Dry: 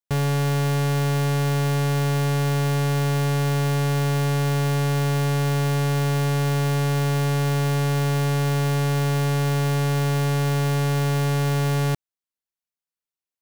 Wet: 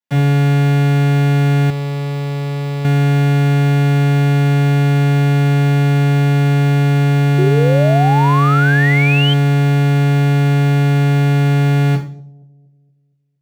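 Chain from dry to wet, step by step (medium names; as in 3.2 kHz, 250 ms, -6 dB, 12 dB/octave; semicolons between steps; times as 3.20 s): bucket-brigade echo 233 ms, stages 1024, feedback 47%, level -23 dB; reverberation RT60 0.45 s, pre-delay 3 ms, DRR -10 dB; 7.38–9.34 s: painted sound rise 360–3200 Hz -13 dBFS; treble shelf 3.7 kHz -6 dB; 1.70–2.85 s: hard clipper -16 dBFS, distortion -14 dB; high-pass 57 Hz; trim -3.5 dB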